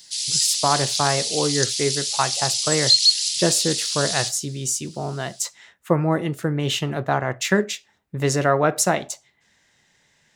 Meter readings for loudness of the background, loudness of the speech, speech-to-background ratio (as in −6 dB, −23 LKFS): −20.0 LKFS, −23.5 LKFS, −3.5 dB